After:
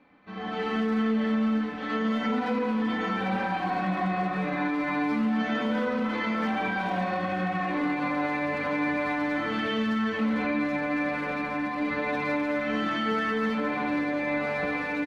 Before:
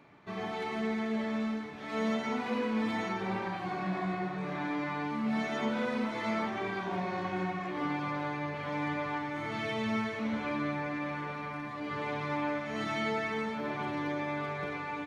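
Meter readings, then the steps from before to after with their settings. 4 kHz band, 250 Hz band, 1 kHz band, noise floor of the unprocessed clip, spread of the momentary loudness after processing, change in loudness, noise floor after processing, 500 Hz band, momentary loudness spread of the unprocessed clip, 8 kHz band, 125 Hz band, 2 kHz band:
+5.0 dB, +7.0 dB, +5.5 dB, -40 dBFS, 3 LU, +6.5 dB, -32 dBFS, +5.0 dB, 4 LU, n/a, +3.0 dB, +7.0 dB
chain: LPF 3700 Hz 12 dB/oct; comb 3.9 ms, depth 95%; limiter -26 dBFS, peak gain reduction 9 dB; speakerphone echo 0.22 s, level -8 dB; AGC gain up to 10 dB; gain -4 dB

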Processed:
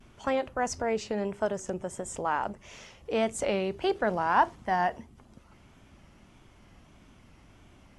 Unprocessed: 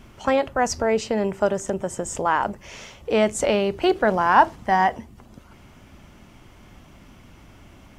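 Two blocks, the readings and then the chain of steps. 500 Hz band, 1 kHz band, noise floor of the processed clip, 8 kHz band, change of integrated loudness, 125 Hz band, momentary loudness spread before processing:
-8.0 dB, -8.0 dB, -57 dBFS, -8.0 dB, -8.0 dB, -7.5 dB, 11 LU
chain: vibrato 1.6 Hz 85 cents; gain -8 dB; MP2 96 kbps 44100 Hz

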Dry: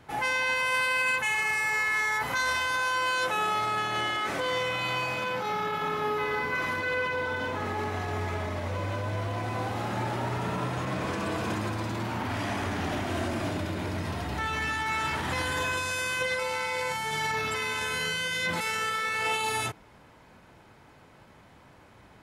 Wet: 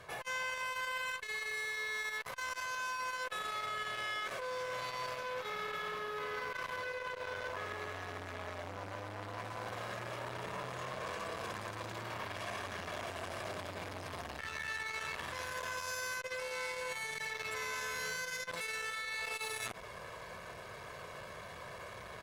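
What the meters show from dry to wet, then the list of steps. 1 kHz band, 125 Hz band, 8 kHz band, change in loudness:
-11.0 dB, -16.0 dB, -7.5 dB, -11.0 dB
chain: in parallel at -1.5 dB: limiter -26 dBFS, peak gain reduction 7.5 dB; on the sum: low shelf 250 Hz -10.5 dB; comb 1.8 ms, depth 77%; one-sided clip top -27 dBFS; reverse; compressor 6:1, threshold -40 dBFS, peak gain reduction 18 dB; reverse; core saturation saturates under 1400 Hz; gain +3.5 dB

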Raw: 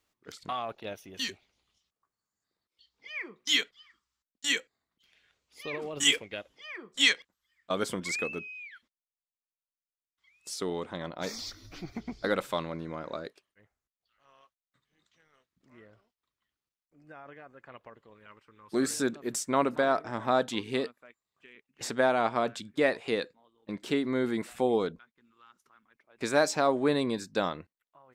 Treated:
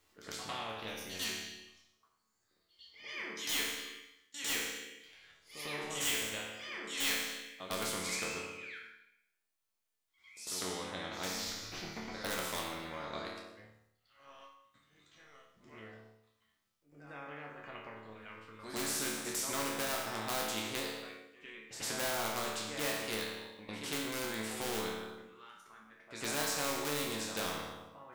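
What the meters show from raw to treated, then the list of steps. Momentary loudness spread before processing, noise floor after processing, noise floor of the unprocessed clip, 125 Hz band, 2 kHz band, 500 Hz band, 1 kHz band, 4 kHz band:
17 LU, -80 dBFS, under -85 dBFS, -6.0 dB, -5.5 dB, -11.0 dB, -7.5 dB, -5.5 dB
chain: reverse echo 0.101 s -15.5 dB; in parallel at -10 dB: wrapped overs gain 20 dB; on the sum: resonator bank D2 major, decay 0.75 s; spectral compressor 2:1; gain +6 dB

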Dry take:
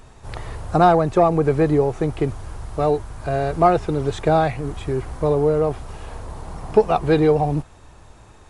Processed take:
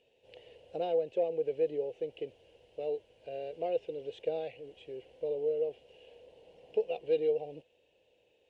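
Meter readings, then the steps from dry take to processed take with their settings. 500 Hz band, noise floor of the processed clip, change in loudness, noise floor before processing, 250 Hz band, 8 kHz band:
-13.0 dB, -71 dBFS, -15.5 dB, -46 dBFS, -25.0 dB, n/a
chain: double band-pass 1200 Hz, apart 2.5 oct; gain -7 dB

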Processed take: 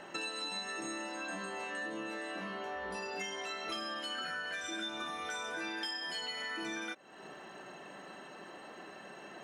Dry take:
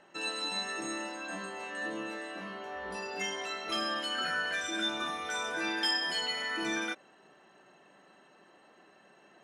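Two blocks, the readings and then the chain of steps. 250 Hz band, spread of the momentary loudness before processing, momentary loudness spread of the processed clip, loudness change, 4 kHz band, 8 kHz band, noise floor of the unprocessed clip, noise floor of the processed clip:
-4.0 dB, 9 LU, 12 LU, -6.0 dB, -6.0 dB, -4.5 dB, -61 dBFS, -51 dBFS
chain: compressor 6:1, threshold -49 dBFS, peak gain reduction 20.5 dB; gain +10.5 dB

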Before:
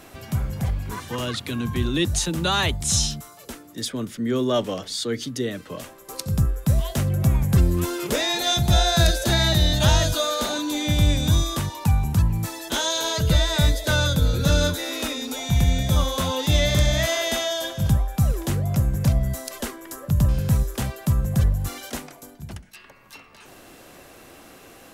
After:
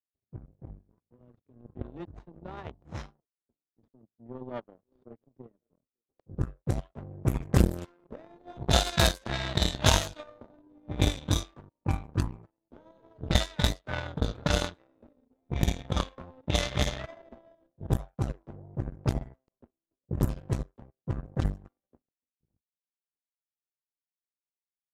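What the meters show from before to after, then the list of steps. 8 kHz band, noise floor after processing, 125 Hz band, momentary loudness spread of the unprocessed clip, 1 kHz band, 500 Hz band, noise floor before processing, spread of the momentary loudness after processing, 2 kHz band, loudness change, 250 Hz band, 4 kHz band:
-11.5 dB, under -85 dBFS, -10.5 dB, 12 LU, -8.0 dB, -9.5 dB, -47 dBFS, 21 LU, -9.0 dB, -8.0 dB, -9.5 dB, -10.0 dB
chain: band-limited delay 0.548 s, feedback 36%, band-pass 580 Hz, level -13 dB; power-law curve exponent 3; low-pass opened by the level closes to 400 Hz, open at -25 dBFS; gain +4.5 dB

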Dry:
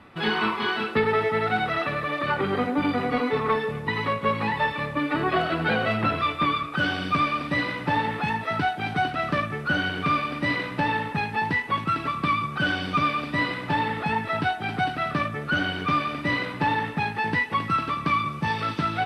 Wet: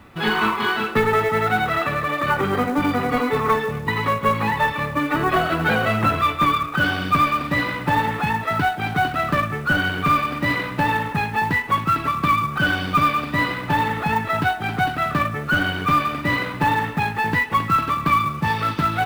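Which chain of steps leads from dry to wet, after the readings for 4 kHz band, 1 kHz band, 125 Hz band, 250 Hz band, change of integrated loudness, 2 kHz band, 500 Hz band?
+2.5 dB, +5.5 dB, +5.5 dB, +3.5 dB, +4.5 dB, +4.5 dB, +3.0 dB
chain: dynamic EQ 1200 Hz, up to +4 dB, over -37 dBFS, Q 1.1; companded quantiser 6-bit; low shelf 86 Hz +11 dB; gain +2 dB

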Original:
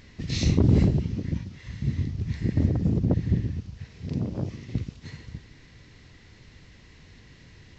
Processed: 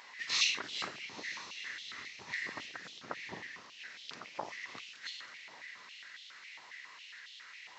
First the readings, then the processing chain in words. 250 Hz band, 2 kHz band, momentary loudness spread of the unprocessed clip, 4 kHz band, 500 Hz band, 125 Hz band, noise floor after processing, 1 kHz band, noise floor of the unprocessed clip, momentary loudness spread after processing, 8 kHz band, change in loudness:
-29.0 dB, +7.5 dB, 20 LU, +5.0 dB, -16.0 dB, -39.5 dB, -54 dBFS, +2.0 dB, -52 dBFS, 16 LU, n/a, -13.5 dB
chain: diffused feedback echo 0.978 s, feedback 46%, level -15 dB; stepped high-pass 7.3 Hz 910–3300 Hz; gain +1 dB

